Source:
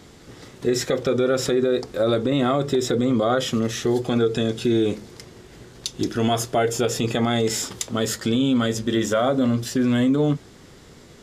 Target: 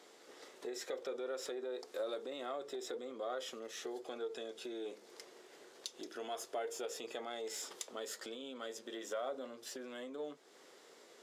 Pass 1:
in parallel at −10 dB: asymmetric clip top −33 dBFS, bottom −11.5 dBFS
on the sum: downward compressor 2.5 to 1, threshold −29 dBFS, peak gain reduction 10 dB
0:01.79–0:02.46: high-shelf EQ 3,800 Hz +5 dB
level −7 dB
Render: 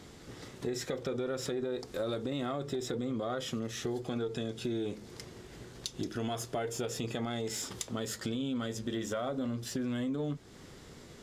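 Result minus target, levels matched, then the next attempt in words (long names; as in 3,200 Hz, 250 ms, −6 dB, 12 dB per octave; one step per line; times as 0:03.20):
250 Hz band +7.0 dB
in parallel at −10 dB: asymmetric clip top −33 dBFS, bottom −11.5 dBFS
on the sum: downward compressor 2.5 to 1, threshold −29 dBFS, peak gain reduction 10 dB
four-pole ladder high-pass 350 Hz, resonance 25%
0:01.79–0:02.46: high-shelf EQ 3,800 Hz +5 dB
level −7 dB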